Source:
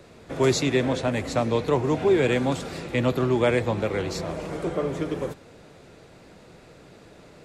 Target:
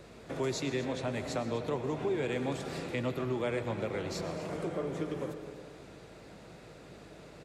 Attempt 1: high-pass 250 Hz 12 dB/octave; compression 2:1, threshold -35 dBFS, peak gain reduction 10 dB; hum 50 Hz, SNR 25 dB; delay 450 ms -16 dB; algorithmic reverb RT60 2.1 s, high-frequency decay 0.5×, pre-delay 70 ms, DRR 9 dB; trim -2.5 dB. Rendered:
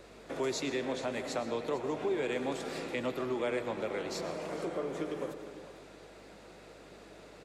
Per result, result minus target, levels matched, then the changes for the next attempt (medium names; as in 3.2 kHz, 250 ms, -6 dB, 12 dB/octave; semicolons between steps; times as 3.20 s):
echo 202 ms late; 125 Hz band -9.0 dB
change: delay 248 ms -16 dB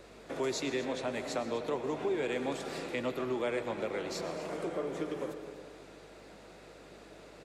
125 Hz band -9.0 dB
change: high-pass 83 Hz 12 dB/octave